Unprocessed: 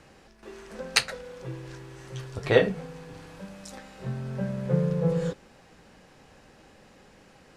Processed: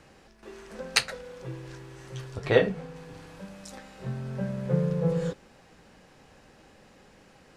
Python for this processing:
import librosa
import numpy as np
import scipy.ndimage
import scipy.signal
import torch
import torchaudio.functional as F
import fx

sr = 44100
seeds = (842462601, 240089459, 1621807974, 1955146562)

y = fx.high_shelf(x, sr, hz=fx.line((2.34, 8300.0), (2.95, 5400.0)), db=-6.0, at=(2.34, 2.95), fade=0.02)
y = y * librosa.db_to_amplitude(-1.0)